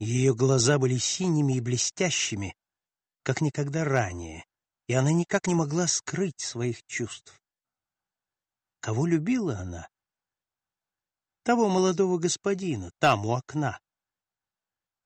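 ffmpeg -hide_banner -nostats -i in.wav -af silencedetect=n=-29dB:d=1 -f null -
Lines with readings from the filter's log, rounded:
silence_start: 7.13
silence_end: 8.84 | silence_duration: 1.70
silence_start: 9.76
silence_end: 11.47 | silence_duration: 1.71
silence_start: 13.74
silence_end: 15.05 | silence_duration: 1.31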